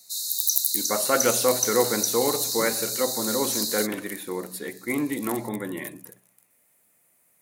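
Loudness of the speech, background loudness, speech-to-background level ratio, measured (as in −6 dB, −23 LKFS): −26.5 LKFS, −25.0 LKFS, −1.5 dB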